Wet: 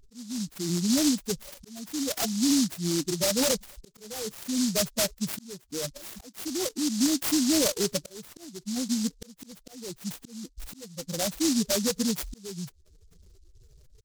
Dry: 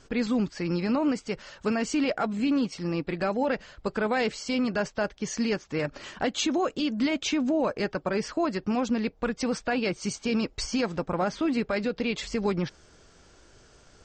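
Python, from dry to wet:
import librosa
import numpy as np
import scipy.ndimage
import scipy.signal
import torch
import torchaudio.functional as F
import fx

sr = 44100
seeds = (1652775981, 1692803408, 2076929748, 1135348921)

y = fx.spec_expand(x, sr, power=3.7)
y = fx.auto_swell(y, sr, attack_ms=777.0)
y = fx.noise_mod_delay(y, sr, seeds[0], noise_hz=5500.0, depth_ms=0.25)
y = F.gain(torch.from_numpy(y), 2.5).numpy()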